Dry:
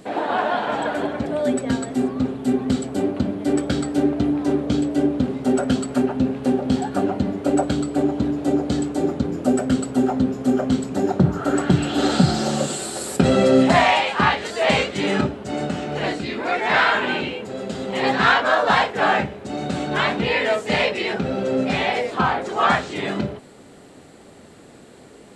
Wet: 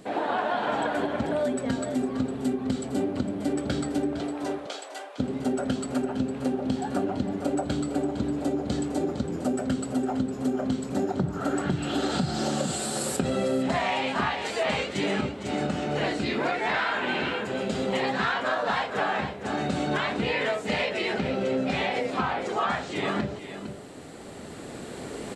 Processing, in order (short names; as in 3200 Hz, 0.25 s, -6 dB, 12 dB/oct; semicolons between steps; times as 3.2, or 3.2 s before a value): recorder AGC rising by 5.9 dB/s; 4.19–5.18 HPF 380 Hz -> 870 Hz 24 dB/oct; echo 0.457 s -11.5 dB; compressor, threshold -19 dBFS, peak gain reduction 9 dB; gain -4 dB